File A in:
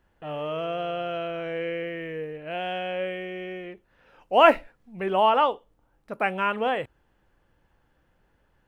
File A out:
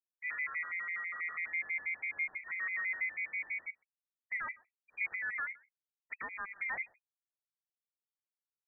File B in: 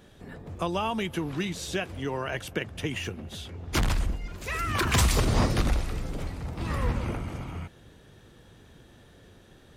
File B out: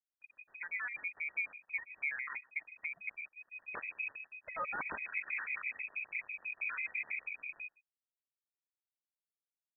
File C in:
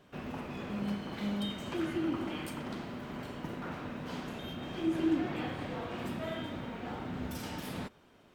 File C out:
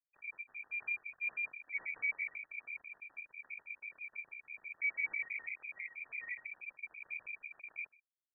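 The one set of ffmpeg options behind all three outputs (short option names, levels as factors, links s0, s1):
-af "afwtdn=0.0316,highpass=f=200:p=1,afftfilt=real='re*gte(hypot(re,im),0.0158)':imag='im*gte(hypot(re,im),0.0158)':win_size=1024:overlap=0.75,acompressor=threshold=0.0316:ratio=8,alimiter=level_in=1.68:limit=0.0631:level=0:latency=1:release=229,volume=0.596,acontrast=46,aresample=11025,acrusher=bits=4:mode=log:mix=0:aa=0.000001,aresample=44100,aecho=1:1:126:0.0708,lowpass=f=2200:t=q:w=0.5098,lowpass=f=2200:t=q:w=0.6013,lowpass=f=2200:t=q:w=0.9,lowpass=f=2200:t=q:w=2.563,afreqshift=-2600,afftfilt=real='re*gt(sin(2*PI*6.1*pts/sr)*(1-2*mod(floor(b*sr/1024/1900),2)),0)':imag='im*gt(sin(2*PI*6.1*pts/sr)*(1-2*mod(floor(b*sr/1024/1900),2)),0)':win_size=1024:overlap=0.75,volume=0.596"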